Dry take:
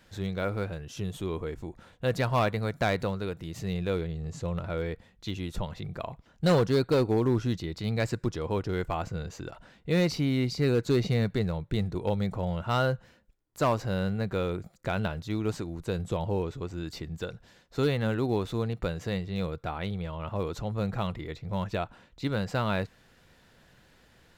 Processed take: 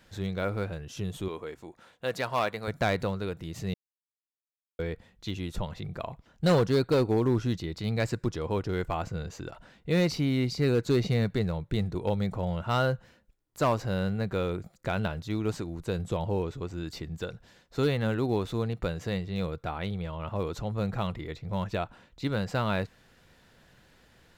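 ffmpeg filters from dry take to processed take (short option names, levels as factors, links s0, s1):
-filter_complex "[0:a]asettb=1/sr,asplit=3[s0][s1][s2];[s0]atrim=end=1.284[s3];[s1]atrim=start=1.28:end=2.68,asetpts=PTS-STARTPTS,afade=t=in:d=0.004:c=qsin,afade=t=out:st=1.396:d=0.004:c=qsin,highpass=f=480:p=1[s4];[s2]atrim=start=2.676[s5];[s3][s4]acrossfade=d=0.004:c1=hsin:c2=qsin[s6];[s6][s5]acrossfade=d=0.004:c1=qsin:c2=hsin,asplit=3[s7][s8][s9];[s7]atrim=end=3.74,asetpts=PTS-STARTPTS,afade=t=out:st=3.736:d=0.004:c=hsin[s10];[s8]atrim=start=3.74:end=4.79,asetpts=PTS-STARTPTS,volume=0[s11];[s9]atrim=start=4.79,asetpts=PTS-STARTPTS,afade=t=in:d=0.004:c=hsin[s12];[s10][s11][s12]concat=n=3:v=0:a=1"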